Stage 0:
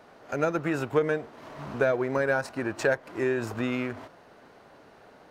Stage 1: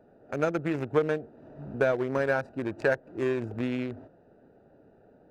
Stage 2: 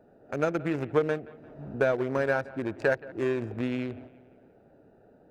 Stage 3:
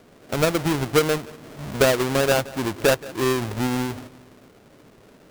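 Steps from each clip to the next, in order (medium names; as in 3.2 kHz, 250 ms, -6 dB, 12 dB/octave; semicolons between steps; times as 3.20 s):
local Wiener filter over 41 samples
bucket-brigade echo 174 ms, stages 4096, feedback 47%, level -20 dB
square wave that keeps the level; trim +3 dB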